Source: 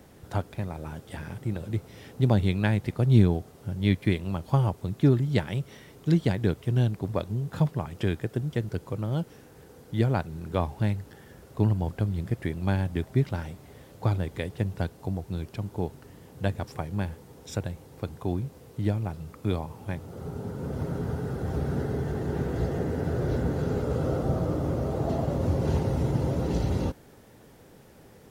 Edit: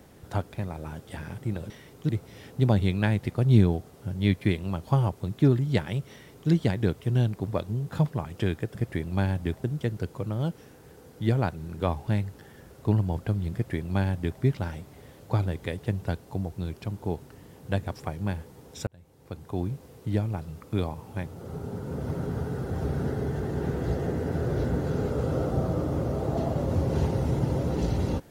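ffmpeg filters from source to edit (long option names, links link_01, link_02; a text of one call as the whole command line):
ffmpeg -i in.wav -filter_complex "[0:a]asplit=6[link_01][link_02][link_03][link_04][link_05][link_06];[link_01]atrim=end=1.702[link_07];[link_02]atrim=start=5.718:end=6.112[link_08];[link_03]atrim=start=1.698:end=8.362[link_09];[link_04]atrim=start=12.248:end=13.142[link_10];[link_05]atrim=start=8.358:end=17.59,asetpts=PTS-STARTPTS,afade=type=out:start_time=9.228:duration=0.004:curve=hsin[link_11];[link_06]atrim=start=17.59,asetpts=PTS-STARTPTS,afade=type=in:duration=0.81[link_12];[link_07][link_08]acrossfade=duration=0.004:curve1=hsin:curve2=hsin[link_13];[link_13][link_09]acrossfade=duration=0.004:curve1=hsin:curve2=hsin[link_14];[link_14][link_10]acrossfade=duration=0.004:curve1=hsin:curve2=hsin[link_15];[link_11][link_12]concat=n=2:v=0:a=1[link_16];[link_15][link_16]acrossfade=duration=0.004:curve1=hsin:curve2=hsin" out.wav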